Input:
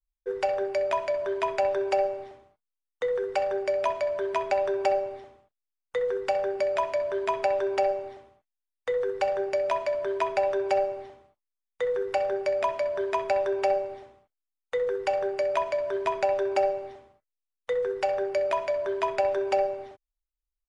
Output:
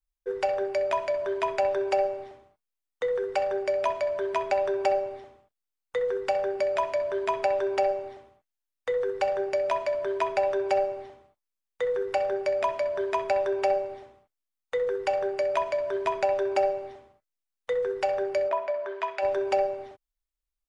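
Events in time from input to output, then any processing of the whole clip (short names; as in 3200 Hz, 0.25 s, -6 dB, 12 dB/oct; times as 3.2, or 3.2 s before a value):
18.48–19.21 band-pass 630 Hz -> 2300 Hz, Q 0.67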